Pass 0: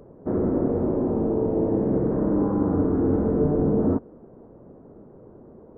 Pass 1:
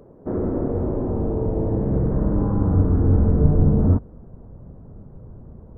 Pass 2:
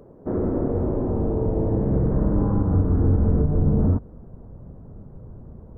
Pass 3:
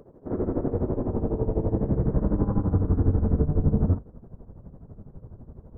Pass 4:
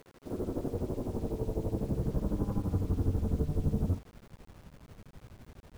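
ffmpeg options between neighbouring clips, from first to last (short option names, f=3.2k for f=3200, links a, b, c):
-af "asubboost=boost=10.5:cutoff=110"
-af "alimiter=limit=-10.5dB:level=0:latency=1:release=157"
-af "tremolo=f=12:d=0.77"
-af "acrusher=bits=7:mix=0:aa=0.000001,volume=-8dB"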